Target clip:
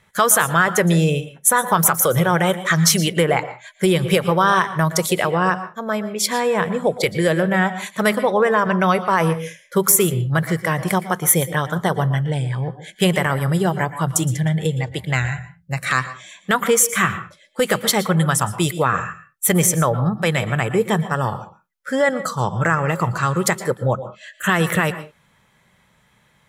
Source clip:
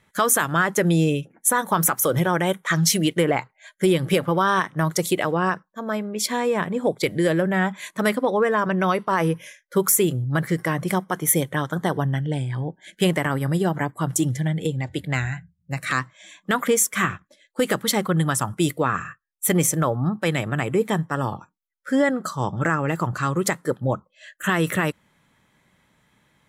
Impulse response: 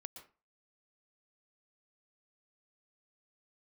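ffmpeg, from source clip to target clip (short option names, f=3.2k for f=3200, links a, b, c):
-filter_complex "[0:a]equalizer=f=290:t=o:w=0.45:g=-11,asplit=2[a][b];[1:a]atrim=start_sample=2205,afade=t=out:st=0.27:d=0.01,atrim=end_sample=12348[c];[b][c]afir=irnorm=-1:irlink=0,volume=6dB[d];[a][d]amix=inputs=2:normalize=0,volume=-1.5dB"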